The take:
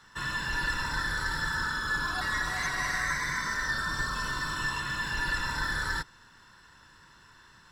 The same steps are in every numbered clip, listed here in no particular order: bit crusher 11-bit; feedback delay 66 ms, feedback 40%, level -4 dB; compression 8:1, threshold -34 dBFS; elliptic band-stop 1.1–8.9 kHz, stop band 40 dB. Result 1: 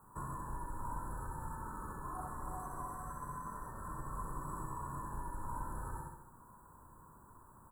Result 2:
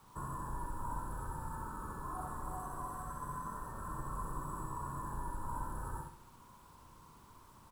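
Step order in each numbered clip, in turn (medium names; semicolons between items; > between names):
feedback delay > compression > bit crusher > elliptic band-stop; compression > elliptic band-stop > bit crusher > feedback delay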